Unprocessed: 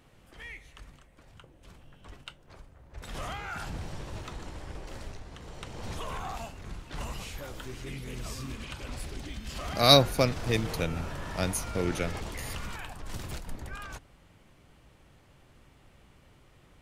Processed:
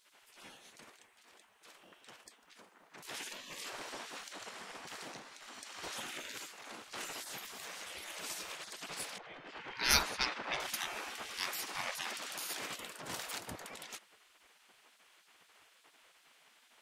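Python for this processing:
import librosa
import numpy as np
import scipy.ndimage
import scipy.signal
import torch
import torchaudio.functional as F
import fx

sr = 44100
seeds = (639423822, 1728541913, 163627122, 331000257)

y = fx.env_lowpass(x, sr, base_hz=1300.0, full_db=-13.5, at=(9.18, 10.6))
y = fx.spec_gate(y, sr, threshold_db=-20, keep='weak')
y = F.gain(torch.from_numpy(y), 3.5).numpy()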